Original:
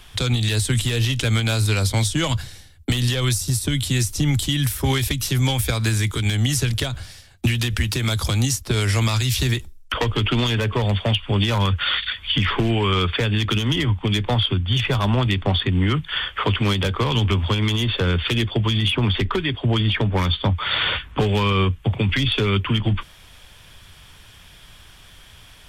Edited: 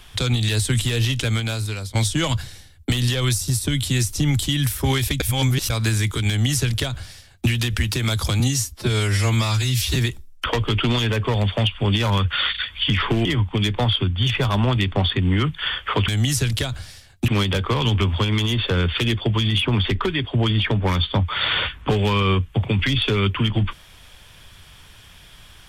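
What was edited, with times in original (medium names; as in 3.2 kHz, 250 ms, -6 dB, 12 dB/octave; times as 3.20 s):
1.10–1.95 s: fade out, to -14 dB
5.20–5.70 s: reverse
6.29–7.49 s: copy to 16.58 s
8.40–9.44 s: stretch 1.5×
12.73–13.75 s: delete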